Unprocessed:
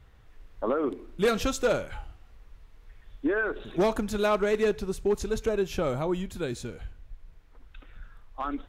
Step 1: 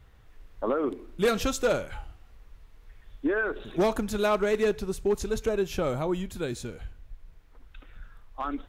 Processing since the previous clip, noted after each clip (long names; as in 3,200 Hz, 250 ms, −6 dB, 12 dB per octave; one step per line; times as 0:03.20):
high-shelf EQ 10,000 Hz +4.5 dB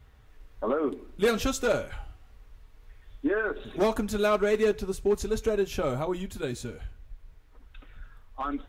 notch comb filter 170 Hz
level +1 dB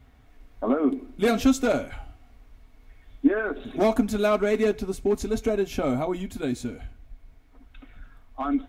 hollow resonant body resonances 260/690/2,200 Hz, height 13 dB, ringing for 65 ms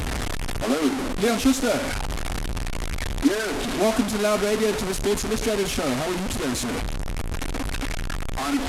linear delta modulator 64 kbit/s, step −20.5 dBFS